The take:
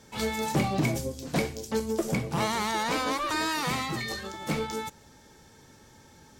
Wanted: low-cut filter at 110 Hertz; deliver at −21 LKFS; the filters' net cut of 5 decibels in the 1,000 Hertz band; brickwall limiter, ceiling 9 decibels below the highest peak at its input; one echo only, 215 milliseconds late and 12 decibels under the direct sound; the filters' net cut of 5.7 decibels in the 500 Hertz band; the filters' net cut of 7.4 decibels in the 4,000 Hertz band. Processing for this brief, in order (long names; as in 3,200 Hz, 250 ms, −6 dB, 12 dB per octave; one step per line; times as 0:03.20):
high-pass filter 110 Hz
parametric band 500 Hz −6 dB
parametric band 1,000 Hz −4 dB
parametric band 4,000 Hz −9 dB
brickwall limiter −25 dBFS
single-tap delay 215 ms −12 dB
level +14 dB